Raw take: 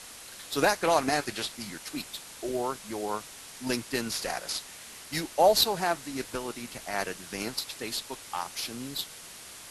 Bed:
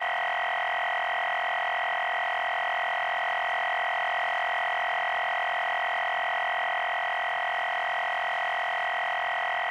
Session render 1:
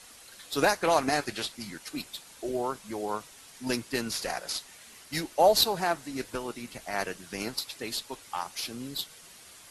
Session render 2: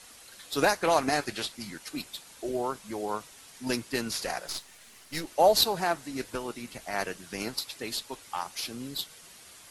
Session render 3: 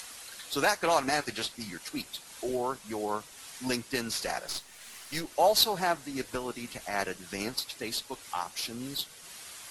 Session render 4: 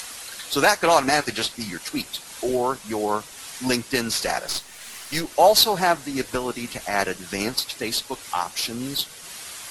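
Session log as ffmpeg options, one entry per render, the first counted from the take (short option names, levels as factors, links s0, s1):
-af "afftdn=nr=7:nf=-46"
-filter_complex "[0:a]asettb=1/sr,asplit=3[s0][s1][s2];[s0]atrim=end=4.474[s3];[s1]atrim=start=4.47:end=5.27,asetpts=PTS-STARTPTS,afade=t=in:d=0.004:c=qsin,afade=t=out:st=0.796:d=0.004:c=qsin,aeval=exprs='if(lt(val(0),0),0.447*val(0),val(0))':c=same[s4];[s2]atrim=start=5.266[s5];[s3][s4]acrossfade=d=0.004:c1=hsin:c2=qsin[s6];[s6][s5]acrossfade=d=0.004:c1=qsin:c2=hsin"
-filter_complex "[0:a]acrossover=split=700[s0][s1];[s0]alimiter=limit=0.0708:level=0:latency=1:release=399[s2];[s1]acompressor=mode=upward:threshold=0.0126:ratio=2.5[s3];[s2][s3]amix=inputs=2:normalize=0"
-af "volume=2.66,alimiter=limit=0.708:level=0:latency=1"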